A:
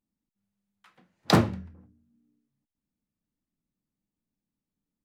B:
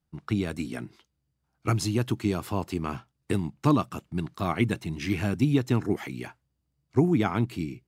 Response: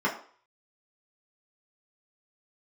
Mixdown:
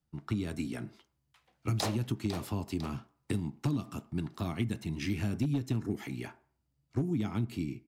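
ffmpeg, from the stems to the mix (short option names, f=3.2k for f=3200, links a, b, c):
-filter_complex "[0:a]highpass=600,equalizer=f=1.4k:t=o:w=1.1:g=-10,adelay=500,volume=-2dB,asplit=2[a][b];[b]volume=-10.5dB[c];[1:a]acrossover=split=300|3000[d][e][f];[e]acompressor=threshold=-37dB:ratio=6[g];[d][g][f]amix=inputs=3:normalize=0,volume=-2.5dB,asplit=2[h][i];[i]volume=-21.5dB[j];[2:a]atrim=start_sample=2205[k];[j][k]afir=irnorm=-1:irlink=0[l];[c]aecho=0:1:501|1002|1503|2004|2505:1|0.38|0.144|0.0549|0.0209[m];[a][h][l][m]amix=inputs=4:normalize=0,asoftclip=type=hard:threshold=-18.5dB,acompressor=threshold=-27dB:ratio=6"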